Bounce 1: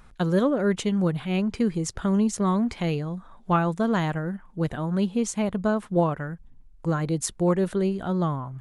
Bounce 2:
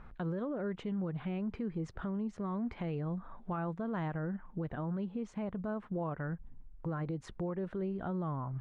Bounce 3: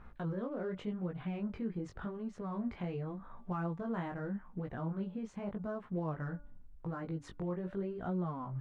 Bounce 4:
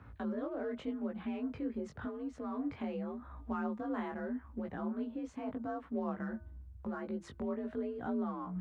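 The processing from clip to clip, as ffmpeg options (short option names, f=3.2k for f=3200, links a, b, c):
-af "lowpass=1.9k,acompressor=threshold=-33dB:ratio=4,alimiter=level_in=5.5dB:limit=-24dB:level=0:latency=1:release=41,volume=-5.5dB"
-af "aeval=exprs='0.0355*(cos(1*acos(clip(val(0)/0.0355,-1,1)))-cos(1*PI/2))+0.000282*(cos(8*acos(clip(val(0)/0.0355,-1,1)))-cos(8*PI/2))':c=same,flanger=delay=16.5:depth=6:speed=0.86,bandreject=f=290:t=h:w=4,bandreject=f=580:t=h:w=4,bandreject=f=870:t=h:w=4,bandreject=f=1.16k:t=h:w=4,bandreject=f=1.45k:t=h:w=4,volume=1.5dB"
-af "afreqshift=51"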